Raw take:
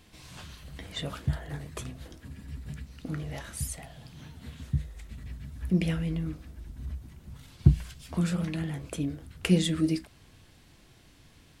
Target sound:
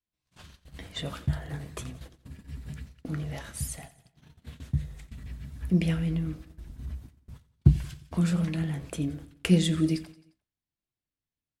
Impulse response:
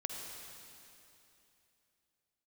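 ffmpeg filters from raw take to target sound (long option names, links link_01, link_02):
-af "adynamicequalizer=threshold=0.0158:dfrequency=160:dqfactor=2.9:tfrequency=160:tqfactor=2.9:attack=5:release=100:ratio=0.375:range=1.5:mode=boostabove:tftype=bell,agate=range=-38dB:threshold=-43dB:ratio=16:detection=peak,aecho=1:1:88|176|264|352:0.126|0.0642|0.0327|0.0167"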